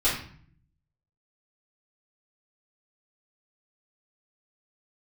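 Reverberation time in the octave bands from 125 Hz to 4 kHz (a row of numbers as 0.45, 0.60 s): 1.1, 0.90, 0.50, 0.50, 0.50, 0.45 s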